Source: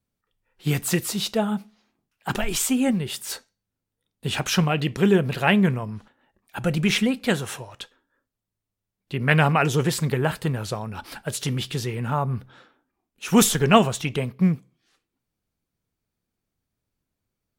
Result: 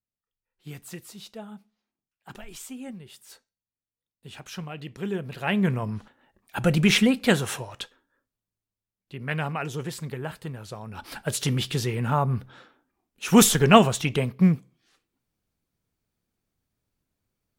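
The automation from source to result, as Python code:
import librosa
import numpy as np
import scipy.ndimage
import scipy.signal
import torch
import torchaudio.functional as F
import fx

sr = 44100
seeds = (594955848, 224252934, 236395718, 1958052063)

y = fx.gain(x, sr, db=fx.line((4.41, -17.0), (5.37, -10.0), (5.87, 2.0), (7.79, 2.0), (9.15, -10.5), (10.68, -10.5), (11.2, 1.0)))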